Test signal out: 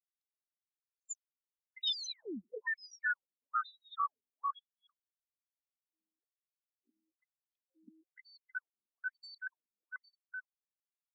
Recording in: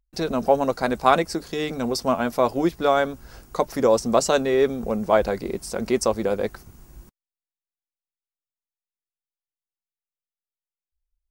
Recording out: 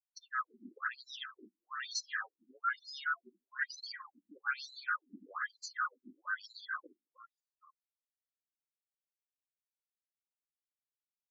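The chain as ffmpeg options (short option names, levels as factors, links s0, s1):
-af "afftfilt=real='real(if(lt(b,960),b+48*(1-2*mod(floor(b/48),2)),b),0)':imag='imag(if(lt(b,960),b+48*(1-2*mod(floor(b/48),2)),b),0)':win_size=2048:overlap=0.75,agate=range=0.00282:threshold=0.00282:ratio=16:detection=peak,asoftclip=type=tanh:threshold=0.119,acontrast=60,aphaser=in_gain=1:out_gain=1:delay=1.4:decay=0.66:speed=0.18:type=sinusoidal,equalizer=f=530:t=o:w=1.7:g=-7,areverse,acompressor=threshold=0.0562:ratio=16,areverse,highpass=190,aecho=1:1:296|312|615:0.422|0.562|0.335,afftdn=nr=33:nf=-38,afftfilt=real='re*between(b*sr/1024,250*pow(5500/250,0.5+0.5*sin(2*PI*1.1*pts/sr))/1.41,250*pow(5500/250,0.5+0.5*sin(2*PI*1.1*pts/sr))*1.41)':imag='im*between(b*sr/1024,250*pow(5500/250,0.5+0.5*sin(2*PI*1.1*pts/sr))/1.41,250*pow(5500/250,0.5+0.5*sin(2*PI*1.1*pts/sr))*1.41)':win_size=1024:overlap=0.75,volume=0.531"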